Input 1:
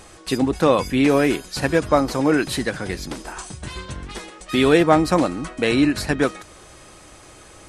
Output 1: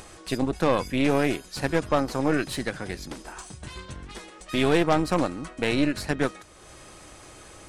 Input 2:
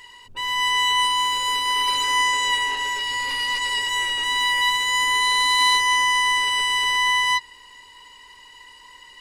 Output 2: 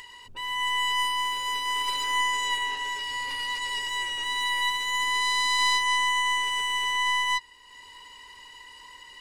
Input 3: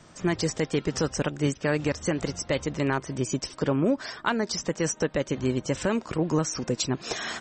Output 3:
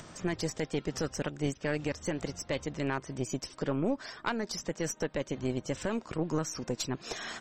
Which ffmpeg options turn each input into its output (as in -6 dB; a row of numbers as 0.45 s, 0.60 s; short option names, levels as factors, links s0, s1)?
-af "acompressor=mode=upward:threshold=0.0251:ratio=2.5,aeval=exprs='0.891*(cos(1*acos(clip(val(0)/0.891,-1,1)))-cos(1*PI/2))+0.0708*(cos(4*acos(clip(val(0)/0.891,-1,1)))-cos(4*PI/2))+0.141*(cos(6*acos(clip(val(0)/0.891,-1,1)))-cos(6*PI/2))':c=same,volume=0.447"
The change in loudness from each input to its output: -6.0 LU, -6.0 LU, -6.5 LU